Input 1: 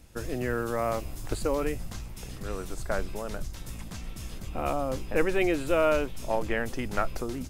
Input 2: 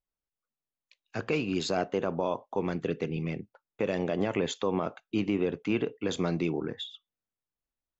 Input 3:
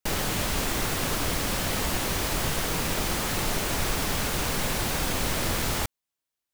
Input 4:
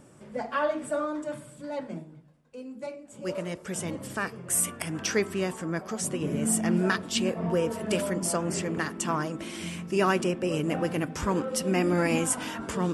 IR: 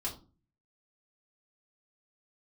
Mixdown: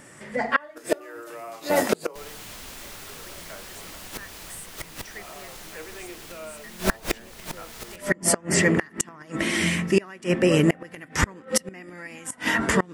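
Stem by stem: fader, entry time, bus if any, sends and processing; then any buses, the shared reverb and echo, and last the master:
+2.0 dB, 0.60 s, send -3 dB, steep high-pass 320 Hz 96 dB/octave
-9.0 dB, 0.00 s, no send, none
+1.5 dB, 2.10 s, send -16.5 dB, none
+1.0 dB, 0.00 s, no send, peaking EQ 1.9 kHz +13.5 dB 0.3 oct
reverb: on, RT60 0.35 s, pre-delay 3 ms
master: level rider gain up to 14 dB; inverted gate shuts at -7 dBFS, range -29 dB; tape noise reduction on one side only encoder only

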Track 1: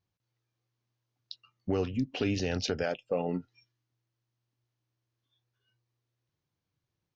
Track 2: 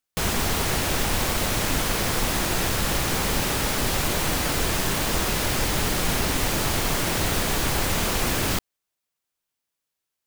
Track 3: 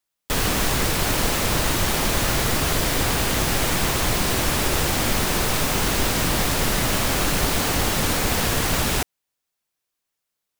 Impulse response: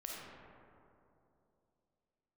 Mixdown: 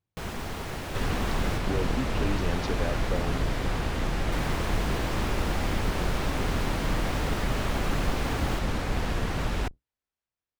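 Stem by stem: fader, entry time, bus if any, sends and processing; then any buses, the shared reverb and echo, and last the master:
-1.5 dB, 0.00 s, no send, none
-9.0 dB, 0.00 s, muted 1.58–4.32 s, no send, none
-7.5 dB, 0.65 s, no send, octave divider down 2 oct, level +4 dB; treble shelf 9.7 kHz -10.5 dB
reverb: none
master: treble shelf 4.1 kHz -12 dB

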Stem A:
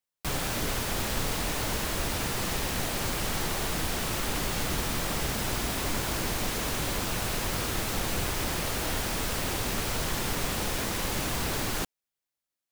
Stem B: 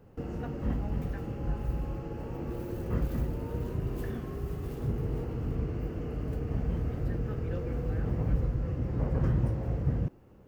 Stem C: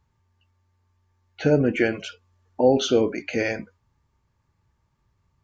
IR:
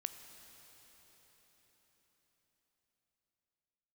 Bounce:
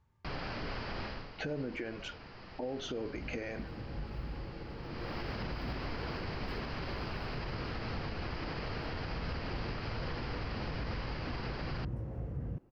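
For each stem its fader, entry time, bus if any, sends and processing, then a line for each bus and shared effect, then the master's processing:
1.05 s -6.5 dB -> 1.32 s -18 dB -> 4.77 s -18 dB -> 5.16 s -6.5 dB, 0.00 s, no bus, no send, Chebyshev low-pass 5 kHz, order 6; peaking EQ 3.6 kHz -11 dB 0.28 oct
-8.0 dB, 2.50 s, bus A, no send, none
-2.5 dB, 0.00 s, bus A, no send, none
bus A: 0.0 dB, treble shelf 4.4 kHz -10 dB; compression 6:1, threshold -32 dBFS, peak gain reduction 16 dB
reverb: none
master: peak limiter -29 dBFS, peak gain reduction 8.5 dB

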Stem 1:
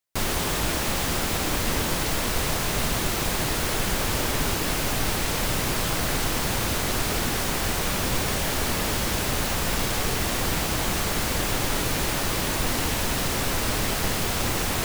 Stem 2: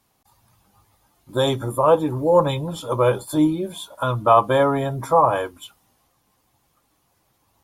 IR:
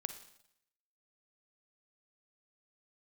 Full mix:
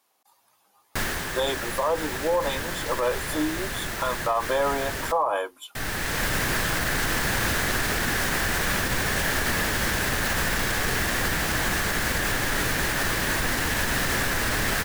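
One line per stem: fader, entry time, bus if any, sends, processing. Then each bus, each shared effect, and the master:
-2.0 dB, 0.80 s, muted 5.12–5.75 s, send -8.5 dB, peaking EQ 1.7 kHz +11 dB 0.49 oct; auto duck -14 dB, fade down 0.40 s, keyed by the second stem
-1.5 dB, 0.00 s, no send, high-pass 450 Hz 12 dB/octave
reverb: on, RT60 0.75 s, pre-delay 39 ms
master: peak limiter -15 dBFS, peak gain reduction 11.5 dB

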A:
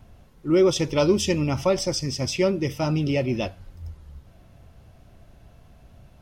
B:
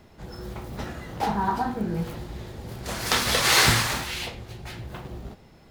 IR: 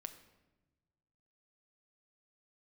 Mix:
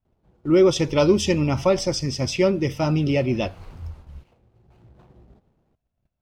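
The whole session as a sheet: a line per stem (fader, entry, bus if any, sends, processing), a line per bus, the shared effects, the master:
+2.5 dB, 0.00 s, no send, gate -43 dBFS, range -33 dB
-14.0 dB, 0.05 s, send -17 dB, median filter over 25 samples; auto duck -13 dB, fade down 0.60 s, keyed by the first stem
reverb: on, RT60 1.1 s, pre-delay 6 ms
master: treble shelf 8 kHz -8.5 dB

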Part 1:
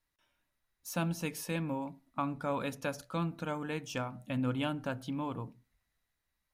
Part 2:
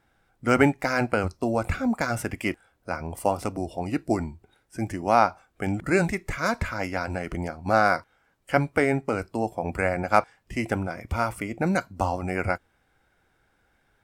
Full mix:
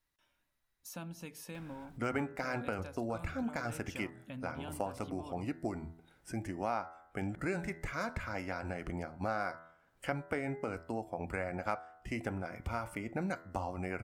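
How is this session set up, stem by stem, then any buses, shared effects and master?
-0.5 dB, 0.00 s, no send, compression 2:1, threshold -50 dBFS, peak gain reduction 12.5 dB
-6.5 dB, 1.55 s, no send, tone controls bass 0 dB, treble -3 dB; de-hum 82.2 Hz, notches 25; upward compressor, threshold -36 dBFS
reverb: none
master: compression 2.5:1, threshold -35 dBFS, peak gain reduction 10.5 dB

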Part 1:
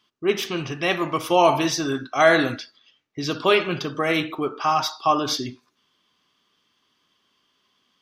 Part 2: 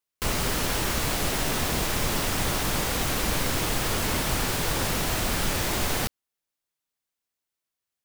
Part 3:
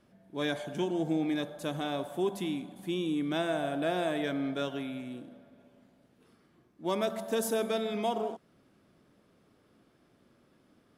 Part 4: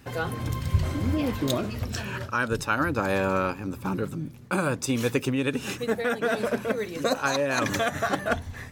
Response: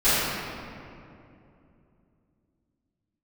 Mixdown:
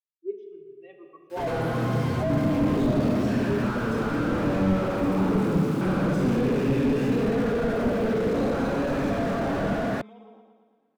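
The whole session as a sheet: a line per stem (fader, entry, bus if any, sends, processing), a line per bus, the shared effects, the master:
-9.5 dB, 0.00 s, send -21 dB, no echo send, spectral contrast expander 2.5:1
-15.0 dB, 2.05 s, no send, no echo send, none
-14.0 dB, 2.05 s, no send, echo send -5.5 dB, Bessel low-pass 1.8 kHz, order 2; comb 3.8 ms, depth 86%; peak limiter -28 dBFS, peak gain reduction 9.5 dB
-3.5 dB, 1.30 s, send -5 dB, no echo send, compression 2:1, threshold -29 dBFS, peak gain reduction 7.5 dB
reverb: on, RT60 2.7 s, pre-delay 3 ms
echo: feedback delay 114 ms, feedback 60%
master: Bessel high-pass 180 Hz, order 6; slew-rate limiter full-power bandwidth 34 Hz

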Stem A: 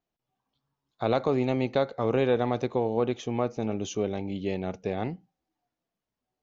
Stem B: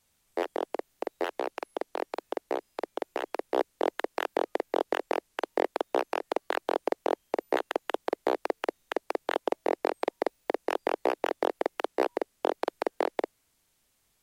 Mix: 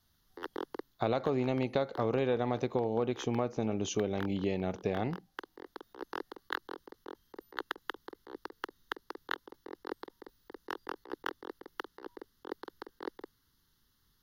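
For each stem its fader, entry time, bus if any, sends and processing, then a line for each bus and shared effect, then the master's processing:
+1.0 dB, 0.00 s, no send, none
-3.0 dB, 0.00 s, no send, bass shelf 290 Hz +5.5 dB; compressor with a negative ratio -31 dBFS, ratio -0.5; static phaser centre 2.4 kHz, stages 6; auto duck -6 dB, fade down 0.20 s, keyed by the first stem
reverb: none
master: compression 3:1, threshold -28 dBFS, peak gain reduction 8 dB

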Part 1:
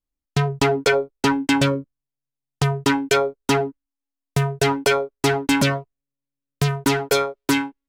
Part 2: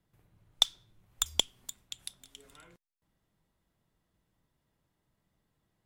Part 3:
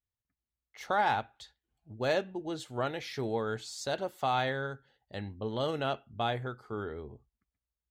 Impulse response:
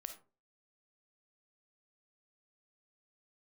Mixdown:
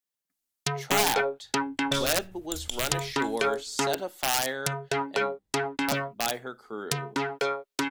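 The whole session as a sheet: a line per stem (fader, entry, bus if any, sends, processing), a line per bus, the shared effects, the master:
-6.0 dB, 0.30 s, no send, low-pass that closes with the level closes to 1.4 kHz, closed at -17 dBFS; tilt EQ +3 dB/octave
-11.0 dB, 1.30 s, no send, bass shelf 99 Hz +11 dB; decay stretcher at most 49 dB/s
0.0 dB, 0.00 s, muted 5.35–5.88 s, send -15 dB, high-pass 190 Hz 24 dB/octave; integer overflow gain 21 dB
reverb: on, RT60 0.35 s, pre-delay 10 ms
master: treble shelf 3.7 kHz +7 dB

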